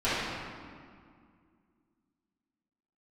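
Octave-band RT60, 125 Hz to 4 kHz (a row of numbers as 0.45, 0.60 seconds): 2.5, 2.9, 2.1, 2.1, 1.8, 1.3 seconds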